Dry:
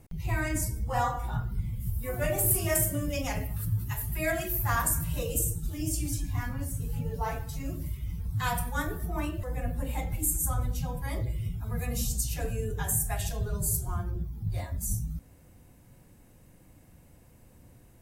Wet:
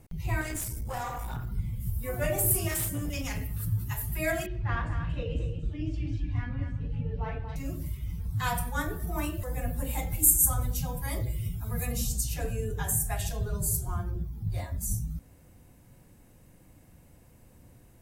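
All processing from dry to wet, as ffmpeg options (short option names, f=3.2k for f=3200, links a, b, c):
-filter_complex "[0:a]asettb=1/sr,asplit=3[a][b][c];[a]atrim=end=0.414[d];[b]atrim=start=0.41:end=1.49,asetpts=PTS-STARTPTS,afade=t=in:d=0.004:c=qsin,afade=t=out:st=1.076:d=0.004:c=qsin,highshelf=f=5.4k:g=9.5,acompressor=threshold=-29dB:ratio=4:attack=3.2:release=140:knee=1:detection=peak,aeval=exprs='clip(val(0),-1,0.0188)':c=same[e];[c]atrim=start=1.486[f];[d][e]acrossfade=d=0.004:c1=hsin:c2=qsin[g];[g][f]acrossfade=d=0.004:c1=qsin:c2=hsin,asettb=1/sr,asplit=3[h][i][j];[h]atrim=end=2.684[k];[i]atrim=start=2.68:end=3.6,asetpts=PTS-STARTPTS,afade=t=in:d=0.004:c=qsin,afade=t=out:st=0.916:d=0.004:c=qsin,equalizer=f=680:t=o:w=0.89:g=-10.5,asoftclip=type=hard:threshold=-27.5dB[l];[j]atrim=start=3.596[m];[k][l]acrossfade=d=0.004:c1=hsin:c2=qsin[n];[n][m]acrossfade=d=0.004:c1=qsin:c2=hsin,asettb=1/sr,asplit=3[o][p][q];[o]atrim=end=4.464[r];[p]atrim=start=4.46:end=7.56,asetpts=PTS-STARTPTS,afade=t=in:d=0.004:c=qsin,afade=t=out:st=3.096:d=0.004:c=qsin,lowpass=f=3.2k:w=0.5412,lowpass=f=3.2k:w=1.3066,equalizer=f=960:t=o:w=1.6:g=-7,aecho=1:1:233:0.376,atrim=end_sample=136710[s];[q]atrim=start=7.556[t];[r][s]acrossfade=d=0.004:c1=hsin:c2=qsin[u];[u][t]acrossfade=d=0.004:c1=qsin:c2=hsin,asettb=1/sr,asplit=3[v][w][x];[v]atrim=end=9.074[y];[w]atrim=start=9.07:end=11.92,asetpts=PTS-STARTPTS,afade=t=in:d=0.004:c=qsin,afade=t=out:st=2.846:d=0.004:c=qsin,highshelf=f=5.9k:g=10.5,asoftclip=type=hard:threshold=-8dB[z];[x]atrim=start=11.916[aa];[y][z]acrossfade=d=0.004:c1=hsin:c2=qsin[ab];[ab][aa]acrossfade=d=0.004:c1=qsin:c2=hsin"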